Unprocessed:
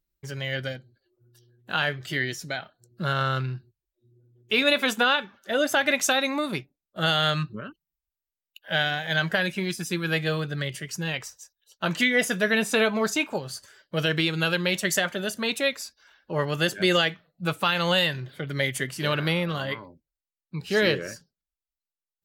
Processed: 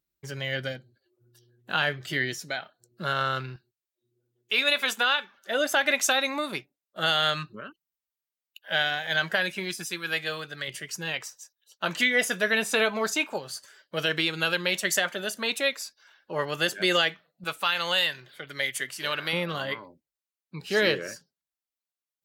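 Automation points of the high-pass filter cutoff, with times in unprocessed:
high-pass filter 6 dB per octave
130 Hz
from 0:02.40 340 Hz
from 0:03.56 1,100 Hz
from 0:05.38 470 Hz
from 0:09.86 1,000 Hz
from 0:10.68 440 Hz
from 0:17.44 1,100 Hz
from 0:19.33 290 Hz

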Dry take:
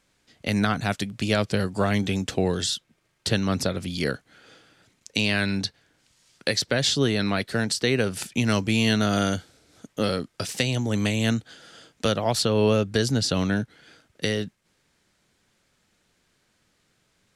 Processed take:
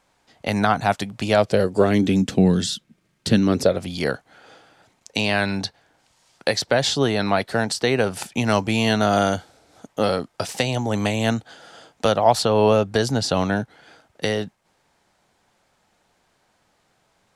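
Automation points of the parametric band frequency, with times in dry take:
parametric band +12.5 dB 1.1 octaves
0:01.30 830 Hz
0:02.31 200 Hz
0:03.29 200 Hz
0:03.85 800 Hz

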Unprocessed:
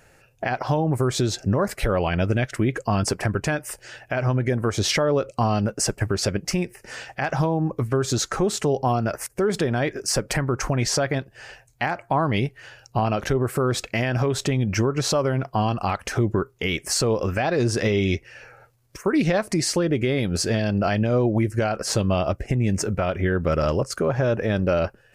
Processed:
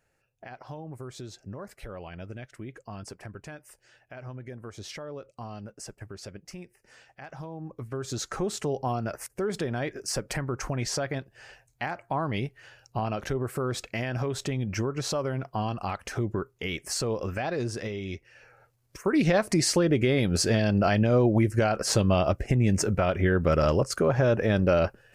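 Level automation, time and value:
0:07.39 −18.5 dB
0:08.35 −7.5 dB
0:17.52 −7.5 dB
0:18.00 −14 dB
0:19.37 −1 dB

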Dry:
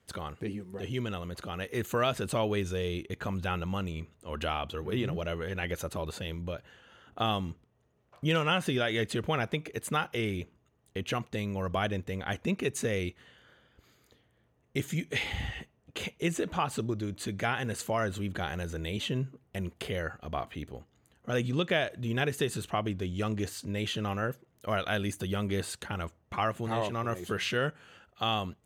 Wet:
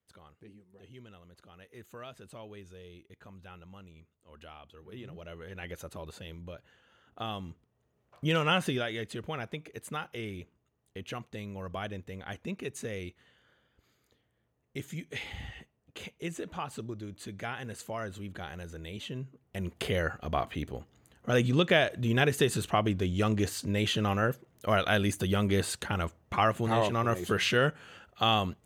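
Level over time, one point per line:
0:04.70 −17.5 dB
0:05.66 −7.5 dB
0:07.31 −7.5 dB
0:08.58 +1.5 dB
0:09.00 −7 dB
0:19.27 −7 dB
0:19.84 +4 dB

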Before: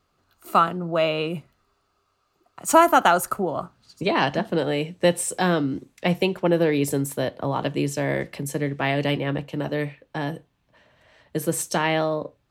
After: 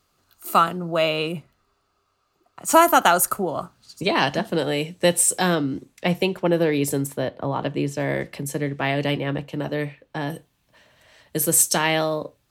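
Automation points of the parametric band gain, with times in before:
parametric band 14,000 Hz 2.1 octaves
+11.5 dB
from 0:01.32 +1 dB
from 0:02.72 +10.5 dB
from 0:05.55 +3.5 dB
from 0:07.07 −6.5 dB
from 0:08.00 +2 dB
from 0:10.30 +14 dB

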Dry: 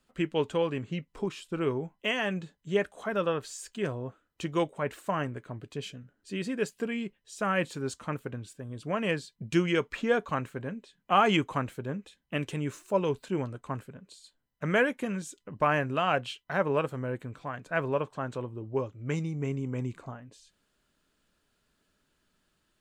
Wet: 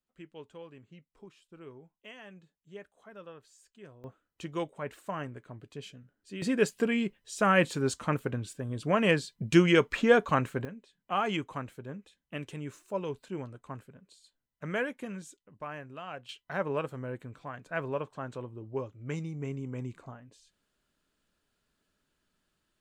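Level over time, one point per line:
−19 dB
from 0:04.04 −6 dB
from 0:06.42 +4.5 dB
from 0:10.65 −7 dB
from 0:15.37 −15 dB
from 0:16.29 −4.5 dB

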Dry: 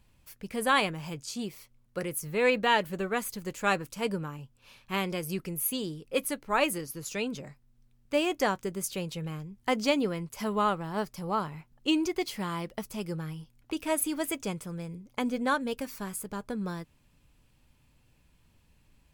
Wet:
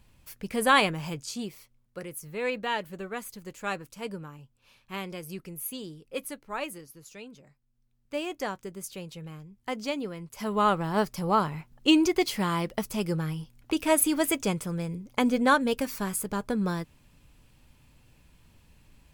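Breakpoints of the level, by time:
0:01.04 +4 dB
0:02.00 −5.5 dB
0:06.26 −5.5 dB
0:07.40 −13.5 dB
0:08.15 −5.5 dB
0:10.16 −5.5 dB
0:10.80 +6 dB

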